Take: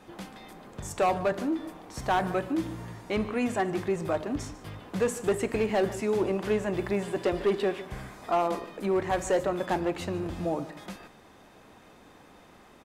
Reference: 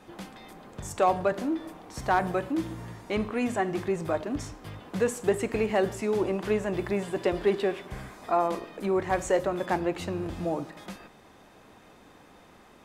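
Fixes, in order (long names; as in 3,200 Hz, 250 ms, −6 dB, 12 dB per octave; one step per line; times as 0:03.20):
clipped peaks rebuilt −19 dBFS
echo removal 148 ms −17 dB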